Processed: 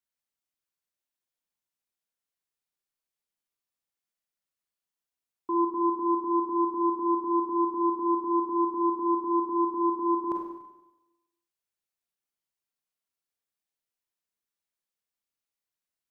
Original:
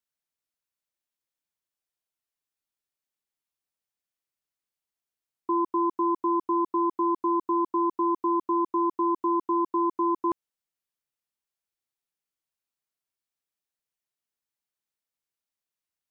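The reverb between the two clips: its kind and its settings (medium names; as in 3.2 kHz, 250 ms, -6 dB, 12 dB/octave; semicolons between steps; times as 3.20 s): Schroeder reverb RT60 1 s, combs from 32 ms, DRR 0.5 dB; trim -4 dB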